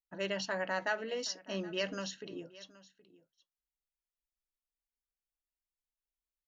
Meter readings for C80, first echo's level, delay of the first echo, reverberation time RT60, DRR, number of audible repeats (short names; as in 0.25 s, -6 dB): none, -20.0 dB, 0.772 s, none, none, 1